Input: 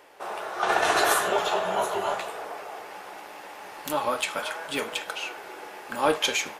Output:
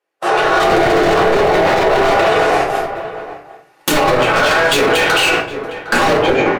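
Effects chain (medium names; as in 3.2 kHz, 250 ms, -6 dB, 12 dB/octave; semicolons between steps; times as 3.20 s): octave divider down 2 oct, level -1 dB; Bessel high-pass 270 Hz, order 4; band-stop 920 Hz, Q 9.8; gate -36 dBFS, range -43 dB; low-pass that closes with the level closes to 720 Hz, closed at -23 dBFS; level rider gain up to 11.5 dB; hard clipper -24.5 dBFS, distortion -4 dB; echo from a far wall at 130 m, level -18 dB; simulated room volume 43 m³, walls mixed, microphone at 0.94 m; loudness maximiser +19.5 dB; trim -3.5 dB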